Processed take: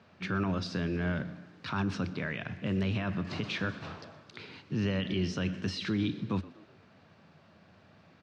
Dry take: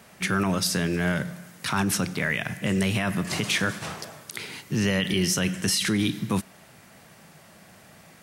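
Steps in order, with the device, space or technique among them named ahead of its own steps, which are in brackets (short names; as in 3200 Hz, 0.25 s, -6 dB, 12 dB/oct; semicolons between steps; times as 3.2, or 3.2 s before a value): frequency-shifting delay pedal into a guitar cabinet (frequency-shifting echo 0.122 s, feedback 48%, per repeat +61 Hz, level -20 dB; speaker cabinet 78–4200 Hz, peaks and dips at 89 Hz +10 dB, 280 Hz +3 dB, 780 Hz -3 dB, 2000 Hz -7 dB, 3200 Hz -4 dB); gain -7 dB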